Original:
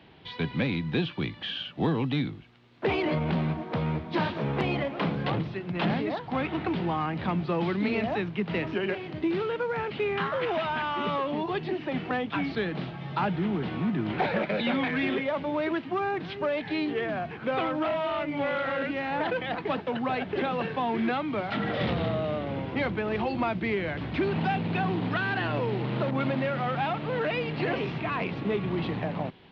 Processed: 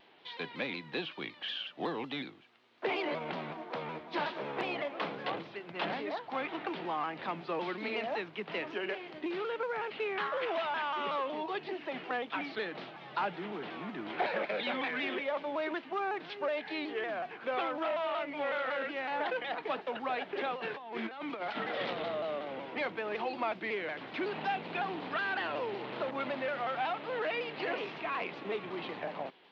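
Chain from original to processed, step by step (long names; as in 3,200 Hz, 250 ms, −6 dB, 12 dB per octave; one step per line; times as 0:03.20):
high-pass filter 420 Hz 12 dB per octave
0:20.54–0:21.63: compressor whose output falls as the input rises −34 dBFS, ratio −0.5
pitch modulation by a square or saw wave saw down 5.4 Hz, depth 100 cents
level −4 dB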